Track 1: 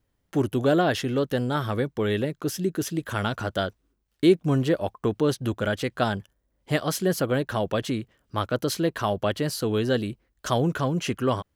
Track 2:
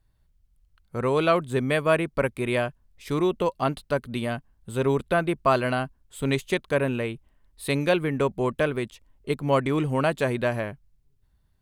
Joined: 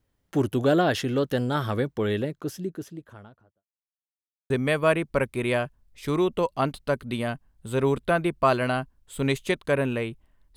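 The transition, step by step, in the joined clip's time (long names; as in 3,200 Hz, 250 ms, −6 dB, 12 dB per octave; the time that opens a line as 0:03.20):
track 1
0:01.73–0:03.65: fade out and dull
0:03.65–0:04.50: silence
0:04.50: continue with track 2 from 0:01.53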